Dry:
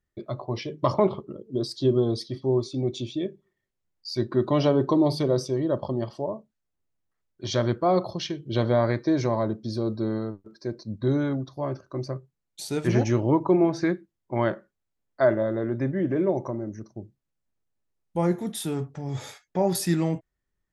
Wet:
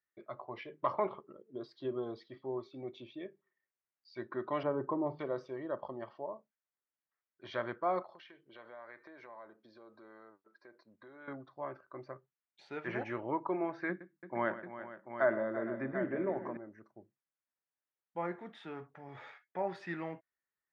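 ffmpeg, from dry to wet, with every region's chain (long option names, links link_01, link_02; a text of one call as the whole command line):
ffmpeg -i in.wav -filter_complex "[0:a]asettb=1/sr,asplit=3[link_01][link_02][link_03];[link_01]atrim=end=4.634[link_04];[link_02]atrim=start=4.63:end=5.19,asetpts=PTS-STARTPTS,afade=type=in:duration=0.004:curve=qsin,afade=type=out:start_time=0.556:duration=0.004:curve=qsin,lowpass=1300,lowshelf=frequency=120:gain=12,bandreject=frequency=700:width=16[link_05];[link_03]atrim=start=5.186[link_06];[link_04][link_05]acrossfade=duration=0.004:curve1=hsin:curve2=qsin[link_07];[link_07][link_06]acrossfade=duration=0.004:curve1=qsin:curve2=hsin,asettb=1/sr,asplit=3[link_08][link_09][link_10];[link_08]atrim=end=8.024[link_11];[link_09]atrim=start=8.02:end=11.28,asetpts=PTS-STARTPTS,afade=type=in:duration=0.004:curve=qsin,afade=type=out:start_time=3.256:duration=0.004:curve=qsin,highpass=frequency=520:poles=1,acompressor=threshold=-39dB:ratio=4:attack=3.2:release=140:knee=1:detection=peak[link_12];[link_10]atrim=start=11.276[link_13];[link_11][link_12]acrossfade=duration=0.004:curve1=hsin:curve2=qsin[link_14];[link_14][link_13]acrossfade=duration=0.004:curve1=qsin:curve2=hsin,asettb=1/sr,asplit=3[link_15][link_16][link_17];[link_15]atrim=end=13.894[link_18];[link_16]atrim=start=13.89:end=16.57,asetpts=PTS-STARTPTS,afade=type=in:duration=0.004:curve=qsin,afade=type=out:start_time=2.676:duration=0.004:curve=qsin,equalizer=frequency=200:width_type=o:width=1.4:gain=9,bandreject=frequency=50:width_type=h:width=6,bandreject=frequency=100:width_type=h:width=6,bandreject=frequency=150:width_type=h:width=6,bandreject=frequency=200:width_type=h:width=6,bandreject=frequency=250:width_type=h:width=6,bandreject=frequency=300:width_type=h:width=6,aecho=1:1:115|337|460|740:0.188|0.224|0.158|0.316,atrim=end_sample=118188[link_19];[link_17]atrim=start=16.566[link_20];[link_18][link_19]acrossfade=duration=0.004:curve1=hsin:curve2=qsin[link_21];[link_21][link_20]acrossfade=duration=0.004:curve1=qsin:curve2=hsin,lowpass=frequency=1900:width=0.5412,lowpass=frequency=1900:width=1.3066,aderivative,volume=10.5dB" out.wav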